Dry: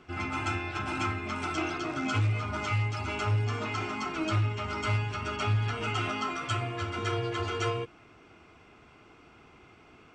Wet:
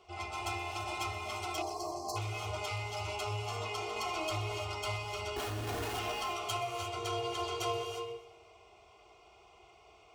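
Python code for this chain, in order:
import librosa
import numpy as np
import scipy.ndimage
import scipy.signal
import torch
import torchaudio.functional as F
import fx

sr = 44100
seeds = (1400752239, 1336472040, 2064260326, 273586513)

p1 = fx.tracing_dist(x, sr, depth_ms=0.043)
p2 = fx.peak_eq(p1, sr, hz=120.0, db=-11.0, octaves=1.9)
p3 = fx.fixed_phaser(p2, sr, hz=670.0, stages=4)
p4 = fx.schmitt(p3, sr, flips_db=-40.5, at=(5.36, 5.99))
p5 = scipy.signal.sosfilt(scipy.signal.butter(2, 52.0, 'highpass', fs=sr, output='sos'), p4)
p6 = p5 + 0.48 * np.pad(p5, (int(2.8 * sr / 1000.0), 0))[:len(p5)]
p7 = fx.rev_gated(p6, sr, seeds[0], gate_ms=370, shape='rising', drr_db=5.5)
p8 = fx.spec_erase(p7, sr, start_s=1.62, length_s=0.55, low_hz=1200.0, high_hz=4000.0)
p9 = p8 + fx.echo_feedback(p8, sr, ms=125, feedback_pct=54, wet_db=-17.5, dry=0)
y = fx.env_flatten(p9, sr, amount_pct=50, at=(3.96, 4.58))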